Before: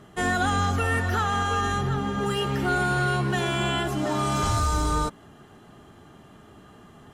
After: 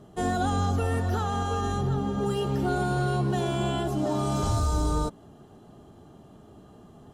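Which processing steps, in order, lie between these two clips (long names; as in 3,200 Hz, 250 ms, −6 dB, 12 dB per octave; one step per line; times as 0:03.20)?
drawn EQ curve 690 Hz 0 dB, 2,000 Hz −14 dB, 3,900 Hz −5 dB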